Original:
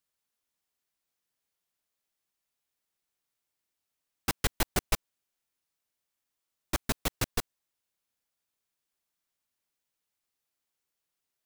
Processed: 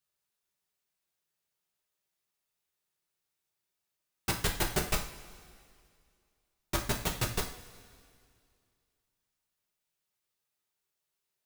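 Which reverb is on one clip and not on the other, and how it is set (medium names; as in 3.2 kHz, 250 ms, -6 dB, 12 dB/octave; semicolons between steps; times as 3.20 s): two-slope reverb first 0.41 s, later 2.3 s, from -17 dB, DRR 0 dB; trim -3 dB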